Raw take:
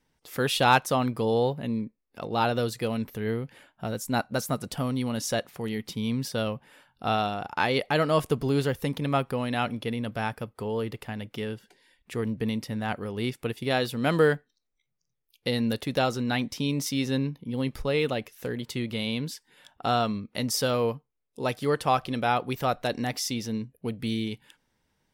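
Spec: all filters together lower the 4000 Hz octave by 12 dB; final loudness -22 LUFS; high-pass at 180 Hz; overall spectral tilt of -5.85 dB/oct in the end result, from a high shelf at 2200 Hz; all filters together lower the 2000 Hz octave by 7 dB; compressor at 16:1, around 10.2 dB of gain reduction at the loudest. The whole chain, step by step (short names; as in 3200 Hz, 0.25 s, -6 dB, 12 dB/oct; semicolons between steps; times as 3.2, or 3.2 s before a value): HPF 180 Hz; bell 2000 Hz -4.5 dB; high shelf 2200 Hz -7 dB; bell 4000 Hz -7.5 dB; compressor 16:1, threshold -27 dBFS; gain +12.5 dB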